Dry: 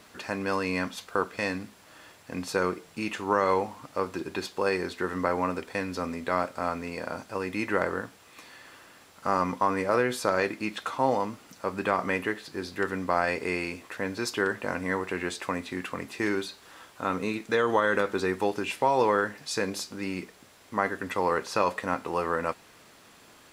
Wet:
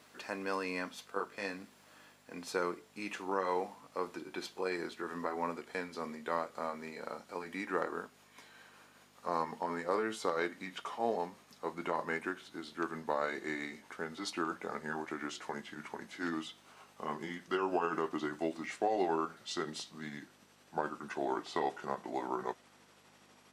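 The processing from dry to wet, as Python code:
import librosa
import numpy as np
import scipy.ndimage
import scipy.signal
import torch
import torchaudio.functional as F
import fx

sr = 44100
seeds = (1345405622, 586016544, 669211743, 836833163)

y = fx.pitch_glide(x, sr, semitones=-5.0, runs='starting unshifted')
y = fx.add_hum(y, sr, base_hz=50, snr_db=21)
y = scipy.signal.sosfilt(scipy.signal.butter(2, 230.0, 'highpass', fs=sr, output='sos'), y)
y = y * 10.0 ** (-7.0 / 20.0)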